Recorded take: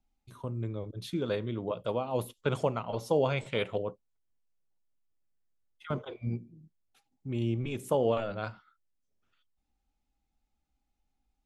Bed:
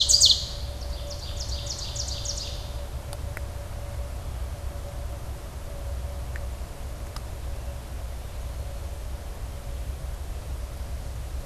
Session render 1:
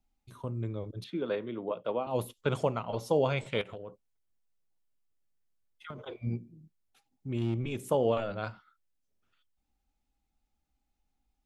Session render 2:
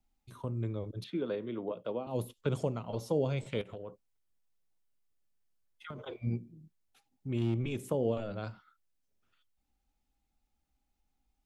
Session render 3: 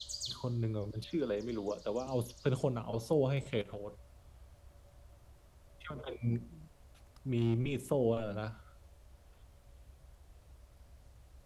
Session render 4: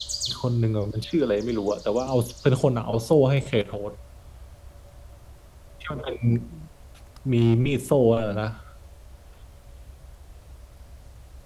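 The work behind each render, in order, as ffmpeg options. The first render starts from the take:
-filter_complex "[0:a]asettb=1/sr,asplit=3[a][b][c];[a]atrim=end=1.044[d];[b]atrim=start=1.04:end=2.07,asetpts=PTS-STARTPTS,afade=t=in:d=0.004:c=qsin,afade=t=out:st=1.026:d=0.004:c=qsin,acrossover=split=190 3600:gain=0.126 1 0.0708[e][f][g];[e][f][g]amix=inputs=3:normalize=0[h];[c]atrim=start=2.066[i];[d][h]acrossfade=d=0.004:c1=hsin:c2=qsin[j];[j][i]acrossfade=d=0.004:c1=qsin:c2=hsin,asettb=1/sr,asplit=3[k][l][m];[k]atrim=end=3.614[n];[l]atrim=start=3.61:end=5.99,asetpts=PTS-STARTPTS,afade=t=in:d=0.004:c=qsin,afade=t=out:st=2.376:d=0.004:c=qsin,acompressor=threshold=-38dB:ratio=10:attack=3.2:release=140:knee=1:detection=peak[o];[m]atrim=start=5.986[p];[n][o]acrossfade=d=0.004:c1=hsin:c2=qsin[q];[q][p]acrossfade=d=0.004:c1=qsin:c2=hsin,asettb=1/sr,asplit=3[r][s][t];[r]atrim=end=7.374[u];[s]atrim=start=7.37:end=7.91,asetpts=PTS-STARTPTS,afade=t=in:d=0.004:c=qsin,afade=t=out:st=0.536:d=0.004:c=qsin,asoftclip=type=hard:threshold=-24.5dB[v];[t]atrim=start=7.906[w];[u][v]acrossfade=d=0.004:c1=hsin:c2=qsin[x];[x][w]acrossfade=d=0.004:c1=qsin:c2=hsin"
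-filter_complex "[0:a]acrossover=split=480|4200[a][b][c];[b]acompressor=threshold=-42dB:ratio=6[d];[c]alimiter=level_in=17.5dB:limit=-24dB:level=0:latency=1:release=437,volume=-17.5dB[e];[a][d][e]amix=inputs=3:normalize=0"
-filter_complex "[1:a]volume=-24dB[a];[0:a][a]amix=inputs=2:normalize=0"
-af "volume=12dB"

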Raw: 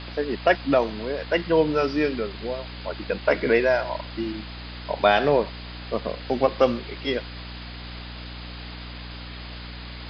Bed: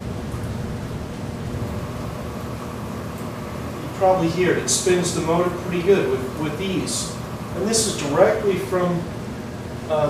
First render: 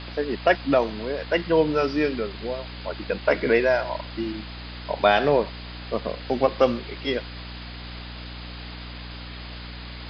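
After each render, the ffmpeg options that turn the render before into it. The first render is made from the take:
-af anull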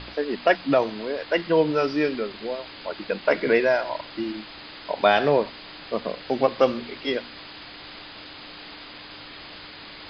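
-af "bandreject=f=60:t=h:w=4,bandreject=f=120:t=h:w=4,bandreject=f=180:t=h:w=4,bandreject=f=240:t=h:w=4"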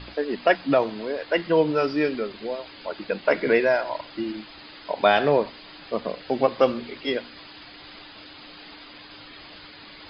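-af "afftdn=nr=7:nf=-42"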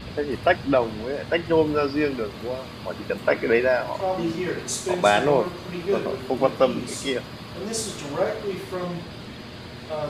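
-filter_complex "[1:a]volume=-9dB[a];[0:a][a]amix=inputs=2:normalize=0"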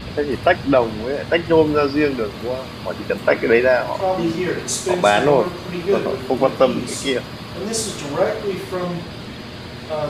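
-af "volume=5.5dB,alimiter=limit=-3dB:level=0:latency=1"

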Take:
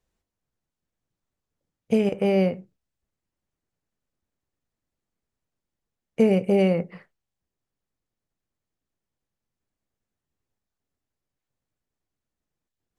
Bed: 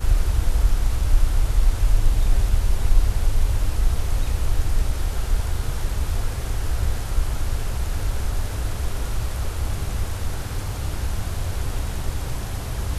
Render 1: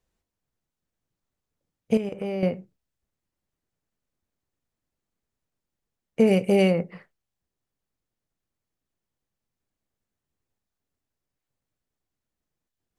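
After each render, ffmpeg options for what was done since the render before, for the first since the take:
-filter_complex "[0:a]asettb=1/sr,asplit=3[a][b][c];[a]atrim=end=1.974[d];[b]atrim=start=1.97:end=2.43,asetpts=PTS-STARTPTS,afade=t=in:d=0.004:c=qsin,afade=t=out:st=0.456:d=0.004:c=qsin,acompressor=threshold=-30dB:ratio=2.5:attack=3.2:release=140:knee=1:detection=peak[e];[c]atrim=start=2.426[f];[d][e]acrossfade=d=0.004:c1=hsin:c2=qsin[g];[g][f]acrossfade=d=0.004:c1=qsin:c2=hsin,asplit=3[h][i][j];[h]afade=t=out:st=6.26:d=0.02[k];[i]highshelf=f=2.4k:g=9,afade=t=in:st=6.26:d=0.02,afade=t=out:st=6.7:d=0.02[l];[j]afade=t=in:st=6.7:d=0.02[m];[k][l][m]amix=inputs=3:normalize=0"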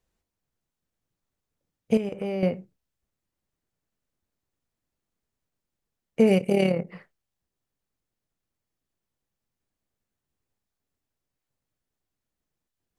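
-filter_complex "[0:a]asettb=1/sr,asplit=3[a][b][c];[a]atrim=end=6.384[d];[b]atrim=start=6.38:end=6.87,asetpts=PTS-STARTPTS,afade=t=in:d=0.004:c=qsin,afade=t=out:st=0.486:d=0.004:c=qsin,tremolo=f=36:d=0.621[e];[c]atrim=start=6.866[f];[d][e]acrossfade=d=0.004:c1=hsin:c2=qsin[g];[g][f]acrossfade=d=0.004:c1=qsin:c2=hsin"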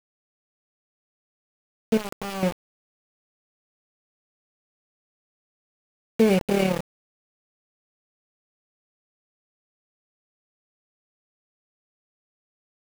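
-af "aeval=exprs='val(0)*gte(abs(val(0)),0.0562)':c=same"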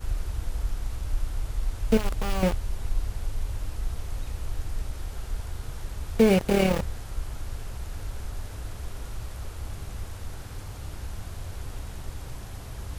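-filter_complex "[1:a]volume=-10.5dB[a];[0:a][a]amix=inputs=2:normalize=0"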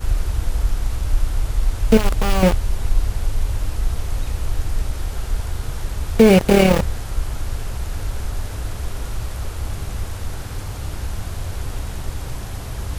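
-af "volume=9.5dB,alimiter=limit=-1dB:level=0:latency=1"

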